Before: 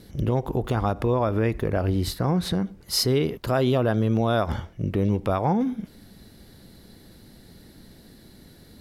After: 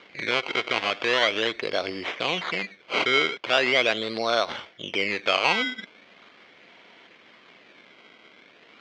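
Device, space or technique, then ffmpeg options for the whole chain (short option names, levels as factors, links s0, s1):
circuit-bent sampling toy: -af "acrusher=samples=17:mix=1:aa=0.000001:lfo=1:lforange=17:lforate=0.4,highpass=550,equalizer=f=840:t=q:w=4:g=-5,equalizer=f=2200:t=q:w=4:g=10,equalizer=f=3200:t=q:w=4:g=8,lowpass=f=4900:w=0.5412,lowpass=f=4900:w=1.3066,volume=1.41"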